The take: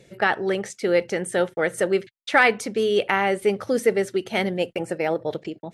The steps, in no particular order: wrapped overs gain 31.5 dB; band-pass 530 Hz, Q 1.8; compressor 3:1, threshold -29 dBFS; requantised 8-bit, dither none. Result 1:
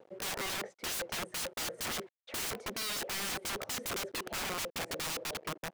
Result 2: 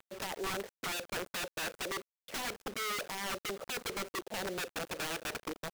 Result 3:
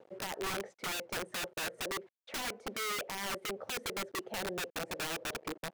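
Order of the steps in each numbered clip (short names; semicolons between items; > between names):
requantised > band-pass > wrapped overs > compressor; compressor > band-pass > requantised > wrapped overs; requantised > compressor > band-pass > wrapped overs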